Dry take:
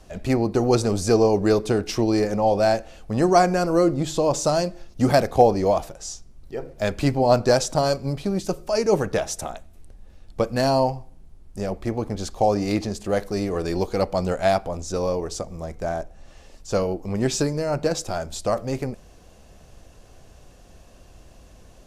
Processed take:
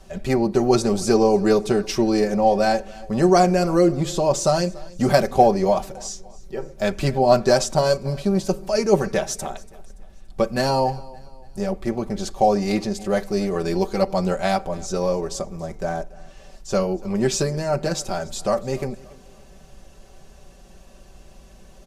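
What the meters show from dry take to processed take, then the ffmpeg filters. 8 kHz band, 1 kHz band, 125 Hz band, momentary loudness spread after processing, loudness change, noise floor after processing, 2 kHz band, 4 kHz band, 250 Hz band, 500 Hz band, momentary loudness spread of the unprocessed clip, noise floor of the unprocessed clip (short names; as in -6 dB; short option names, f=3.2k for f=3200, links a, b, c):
+1.5 dB, +2.0 dB, 0.0 dB, 13 LU, +1.5 dB, -47 dBFS, +1.5 dB, +1.5 dB, +2.0 dB, +1.5 dB, 14 LU, -49 dBFS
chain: -filter_complex "[0:a]aecho=1:1:5.2:0.68,asplit=2[a][b];[b]aecho=0:1:286|572|858:0.0794|0.0342|0.0147[c];[a][c]amix=inputs=2:normalize=0"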